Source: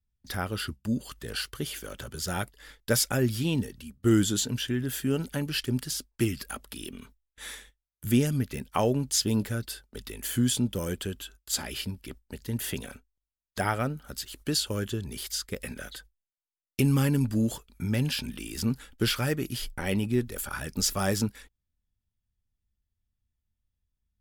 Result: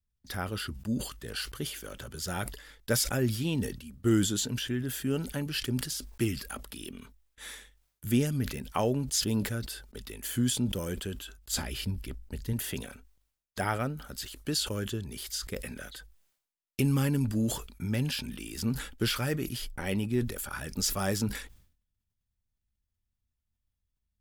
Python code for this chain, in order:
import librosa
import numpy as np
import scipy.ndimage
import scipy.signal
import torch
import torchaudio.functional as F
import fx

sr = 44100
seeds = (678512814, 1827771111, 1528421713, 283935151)

y = fx.low_shelf(x, sr, hz=110.0, db=12.0, at=(11.38, 12.53))
y = fx.sustainer(y, sr, db_per_s=93.0)
y = y * librosa.db_to_amplitude(-3.0)